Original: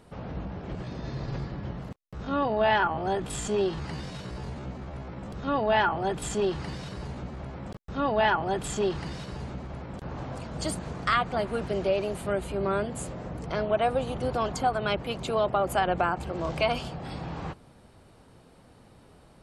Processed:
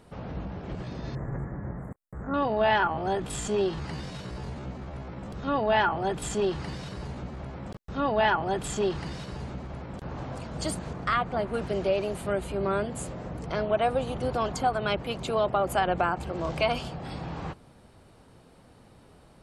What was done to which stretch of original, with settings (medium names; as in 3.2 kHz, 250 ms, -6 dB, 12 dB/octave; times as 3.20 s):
1.15–2.34 s: elliptic band-stop 1.9–7.8 kHz
10.93–11.54 s: treble shelf 2.8 kHz -8.5 dB